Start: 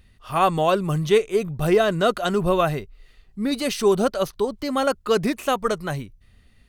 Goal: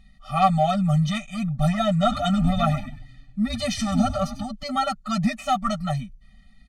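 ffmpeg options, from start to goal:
-filter_complex "[0:a]lowpass=8.2k,aecho=1:1:5.3:0.98,asoftclip=type=tanh:threshold=-7dB,asettb=1/sr,asplit=3[a][b][c];[a]atrim=end=1.944[d];[b]atrim=start=1.94:end=4.48,asetpts=PTS-STARTPTS,afade=t=in:d=0.004:c=qsin,afade=t=out:st=2.536:d=0.004:c=qsin,asplit=5[e][f][g][h][i];[f]adelay=96,afreqshift=-150,volume=-11dB[j];[g]adelay=192,afreqshift=-300,volume=-20.4dB[k];[h]adelay=288,afreqshift=-450,volume=-29.7dB[l];[i]adelay=384,afreqshift=-600,volume=-39.1dB[m];[e][j][k][l][m]amix=inputs=5:normalize=0,atrim=end_sample=112014[n];[c]atrim=start=4.476[o];[d][n]acrossfade=d=0.004:c1=hsin:c2=qsin[p];[p][o]acrossfade=d=0.004:c1=qsin:c2=hsin,afftfilt=real='re*eq(mod(floor(b*sr/1024/290),2),0)':imag='im*eq(mod(floor(b*sr/1024/290),2),0)':win_size=1024:overlap=0.75"

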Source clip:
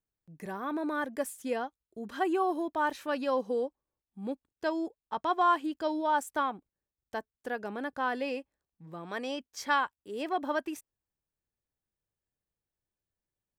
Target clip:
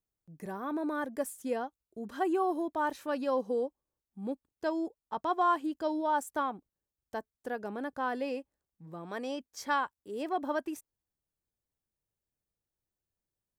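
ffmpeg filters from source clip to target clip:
-af "equalizer=f=2.6k:w=0.64:g=-6"

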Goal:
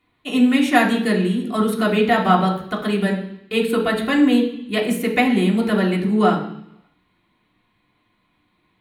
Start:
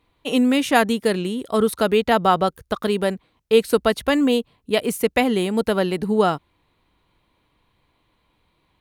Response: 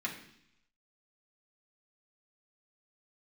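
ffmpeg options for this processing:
-filter_complex "[0:a]asettb=1/sr,asplit=3[a][b][c];[a]atrim=end=3.584[d];[b]atrim=start=3.58:end=4.07,asetpts=PTS-STARTPTS,afade=t=in:d=0.004:c=qsin,afade=t=out:st=0.486:d=0.004:c=qsin,equalizer=f=5.7k:w=4.3:g=-13.5[e];[c]atrim=start=4.066[f];[d][e]acrossfade=d=0.004:c1=hsin:c2=qsin[g];[g][f]acrossfade=d=0.004:c1=qsin:c2=hsin[h];[1:a]atrim=start_sample=2205[i];[h][i]afir=irnorm=-1:irlink=0,volume=-1.5dB"

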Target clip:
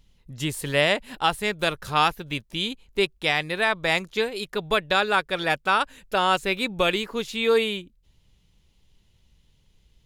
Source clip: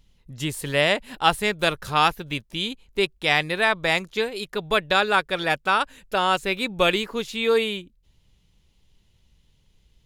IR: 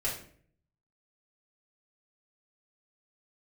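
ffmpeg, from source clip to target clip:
-af "alimiter=limit=-9dB:level=0:latency=1:release=478"

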